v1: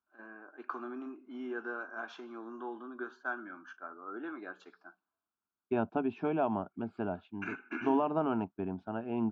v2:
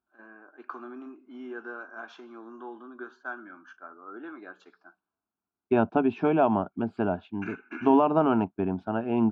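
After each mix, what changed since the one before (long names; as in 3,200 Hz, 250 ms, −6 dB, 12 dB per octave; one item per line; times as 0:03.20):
second voice +8.5 dB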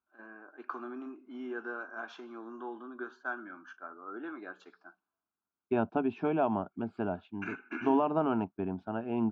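second voice −6.5 dB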